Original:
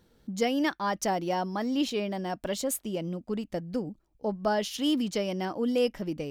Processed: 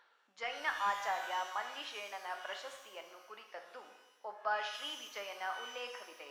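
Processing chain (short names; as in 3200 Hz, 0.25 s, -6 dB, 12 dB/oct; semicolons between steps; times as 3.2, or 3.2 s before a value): reverse; upward compressor, threshold -28 dBFS; reverse; ladder high-pass 900 Hz, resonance 25%; added harmonics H 5 -16 dB, 7 -21 dB, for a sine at -22.5 dBFS; tape spacing loss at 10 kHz 37 dB; shimmer reverb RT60 1 s, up +12 st, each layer -8 dB, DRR 4.5 dB; gain +6 dB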